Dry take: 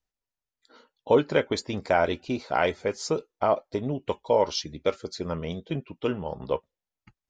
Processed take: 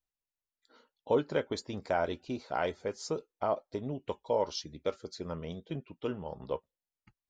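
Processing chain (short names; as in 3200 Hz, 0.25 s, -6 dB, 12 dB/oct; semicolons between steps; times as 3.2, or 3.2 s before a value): dynamic EQ 2300 Hz, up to -5 dB, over -46 dBFS, Q 1.9; gain -7.5 dB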